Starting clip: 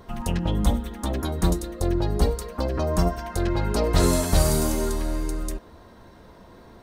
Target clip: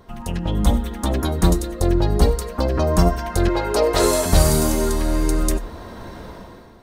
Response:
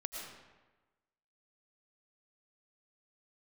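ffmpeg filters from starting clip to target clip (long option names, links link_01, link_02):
-filter_complex "[0:a]asettb=1/sr,asplit=3[link_01][link_02][link_03];[link_01]atrim=end=3.494[link_04];[link_02]atrim=start=3.49:end=4.26,asetpts=PTS-STARTPTS,afade=type=in:duration=0.004:curve=qsin,afade=type=out:start_time=0.766:duration=0.004:curve=qsin,lowshelf=frequency=290:width_type=q:width=1.5:gain=-10.5[link_05];[link_03]atrim=start=4.256[link_06];[link_04][link_05]acrossfade=duration=0.004:curve1=hsin:curve2=qsin[link_07];[link_07][link_06]acrossfade=duration=0.004:curve1=qsin:curve2=hsin,dynaudnorm=framelen=110:gausssize=11:maxgain=16dB,asplit=2[link_08][link_09];[1:a]atrim=start_sample=2205,atrim=end_sample=4410[link_10];[link_09][link_10]afir=irnorm=-1:irlink=0,volume=-2dB[link_11];[link_08][link_11]amix=inputs=2:normalize=0,volume=-5.5dB"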